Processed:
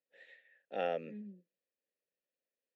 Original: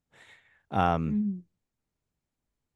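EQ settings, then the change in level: vowel filter e; steep high-pass 160 Hz; peaking EQ 4.5 kHz +8 dB 0.78 oct; +4.5 dB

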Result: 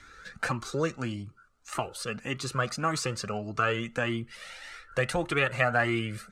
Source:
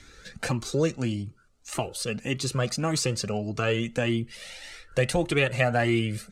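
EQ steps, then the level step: peaking EQ 1.3 kHz +13 dB 1.1 oct; -6.0 dB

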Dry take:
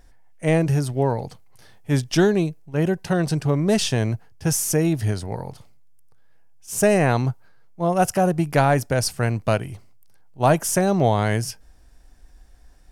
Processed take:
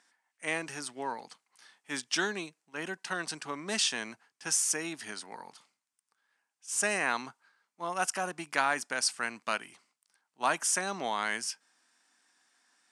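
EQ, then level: elliptic band-pass 230–9000 Hz, stop band 50 dB; tilt shelf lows -3 dB, about 1.3 kHz; resonant low shelf 800 Hz -8 dB, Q 1.5; -5.0 dB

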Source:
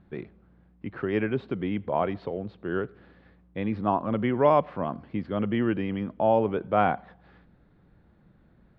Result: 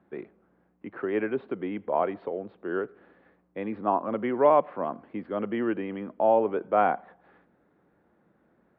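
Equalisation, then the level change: high-pass 52 Hz; three-band isolator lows -19 dB, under 250 Hz, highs -15 dB, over 3.4 kHz; treble shelf 2.8 kHz -9.5 dB; +1.5 dB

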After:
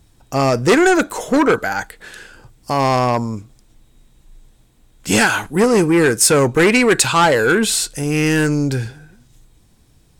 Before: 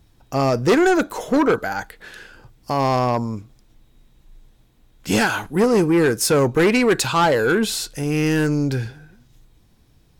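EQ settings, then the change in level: peaking EQ 8.3 kHz +8.5 dB 0.63 oct; dynamic bell 2.1 kHz, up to +4 dB, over -32 dBFS, Q 0.96; +2.5 dB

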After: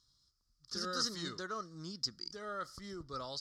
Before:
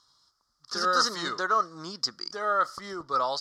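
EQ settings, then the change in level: amplifier tone stack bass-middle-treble 10-0-1; +13.5 dB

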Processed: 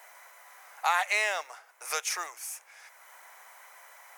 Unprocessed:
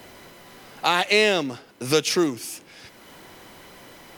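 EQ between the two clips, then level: inverse Chebyshev high-pass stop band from 280 Hz, stop band 50 dB; high-order bell 3.7 kHz -10.5 dB 1.1 oct; -3.0 dB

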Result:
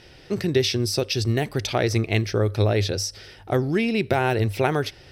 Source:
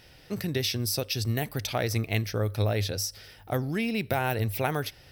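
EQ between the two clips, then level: low-pass 7.6 kHz 12 dB/octave; peaking EQ 370 Hz +8 dB 0.39 oct; +5.0 dB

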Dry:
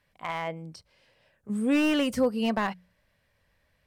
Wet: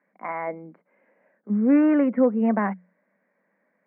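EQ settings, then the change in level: Chebyshev band-pass 190–2200 Hz, order 5; tilt EQ -2 dB/octave; +3.0 dB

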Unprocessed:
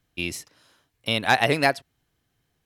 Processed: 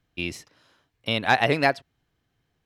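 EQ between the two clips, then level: treble shelf 6.8 kHz -9.5 dB; peaking EQ 10 kHz -4 dB 0.83 oct; 0.0 dB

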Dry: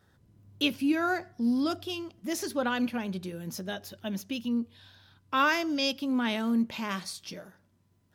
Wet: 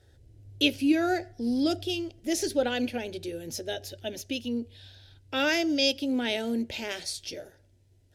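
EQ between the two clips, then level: low-pass 11 kHz 12 dB/octave; bass shelf 95 Hz +11.5 dB; static phaser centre 460 Hz, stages 4; +5.5 dB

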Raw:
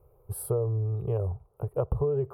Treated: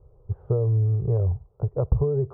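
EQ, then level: Bessel low-pass 1.2 kHz, order 8; bass shelf 240 Hz +9 dB; 0.0 dB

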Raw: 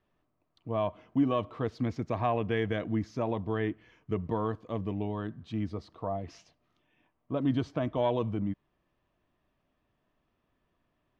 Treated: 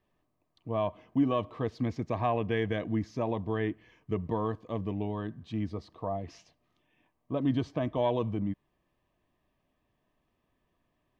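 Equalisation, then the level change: Butterworth band-stop 1.4 kHz, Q 6.6; 0.0 dB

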